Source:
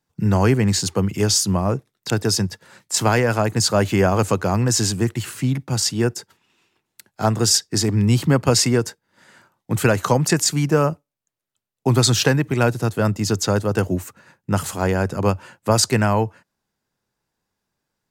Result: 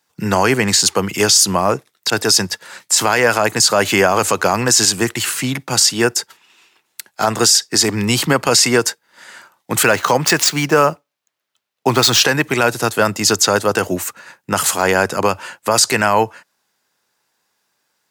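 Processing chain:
0:09.83–0:12.20: running median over 5 samples
high-pass filter 980 Hz 6 dB per octave
boost into a limiter +14.5 dB
level −1 dB

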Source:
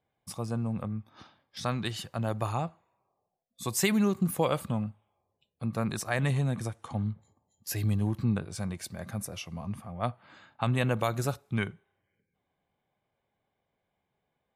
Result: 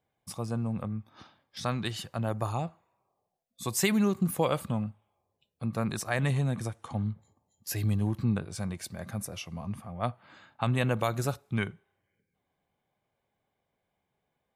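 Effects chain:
0:02.19–0:02.65: parametric band 7,900 Hz → 1,100 Hz −9 dB 0.71 octaves

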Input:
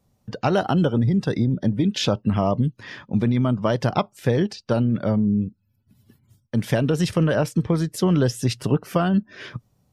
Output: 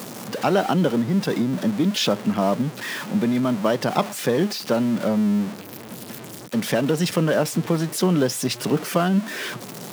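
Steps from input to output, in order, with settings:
converter with a step at zero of −26.5 dBFS
high-pass filter 170 Hz 24 dB per octave

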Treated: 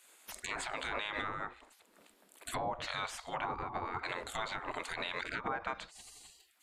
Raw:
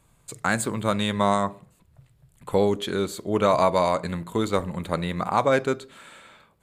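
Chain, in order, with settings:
treble cut that deepens with the level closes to 550 Hz, closed at −16 dBFS
gate on every frequency bin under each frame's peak −20 dB weak
brickwall limiter −33 dBFS, peak gain reduction 10.5 dB
level +7.5 dB

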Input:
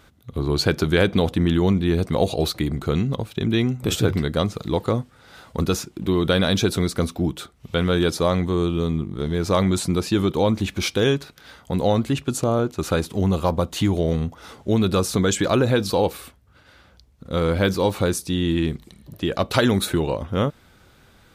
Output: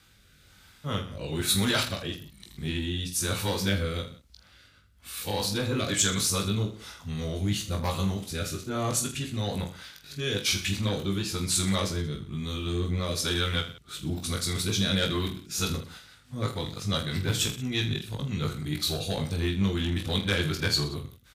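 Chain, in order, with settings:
played backwards from end to start
rotating-speaker cabinet horn 1.1 Hz, later 6 Hz, at 0:15.22
in parallel at −11 dB: sine wavefolder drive 11 dB, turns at −0.5 dBFS
on the sum: guitar amp tone stack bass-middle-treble 5-5-5
on a send: reverse bouncing-ball delay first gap 20 ms, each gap 1.3×, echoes 5

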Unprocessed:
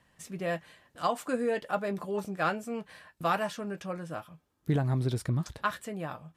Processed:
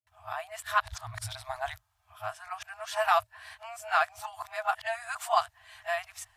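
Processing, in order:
played backwards from end to start
brick-wall band-stop 110–630 Hz
level +4.5 dB

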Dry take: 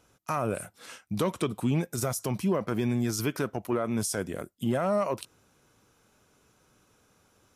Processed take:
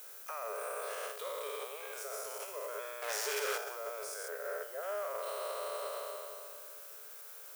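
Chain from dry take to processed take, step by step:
peak hold with a decay on every bin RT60 2.54 s
0:04.28–0:04.83: low-pass filter 1,600 Hz 12 dB per octave
brickwall limiter −34 dBFS, peak gain reduction 22.5 dB
0:03.02–0:03.58: leveller curve on the samples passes 5
background noise violet −51 dBFS
Chebyshev high-pass with heavy ripple 410 Hz, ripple 6 dB
level +6.5 dB

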